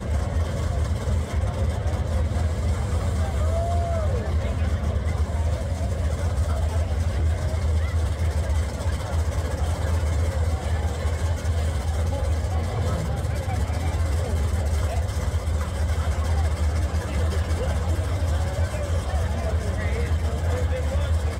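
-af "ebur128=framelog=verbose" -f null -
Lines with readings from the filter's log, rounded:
Integrated loudness:
  I:         -25.5 LUFS
  Threshold: -35.5 LUFS
Loudness range:
  LRA:         0.6 LU
  Threshold: -45.4 LUFS
  LRA low:   -25.8 LUFS
  LRA high:  -25.1 LUFS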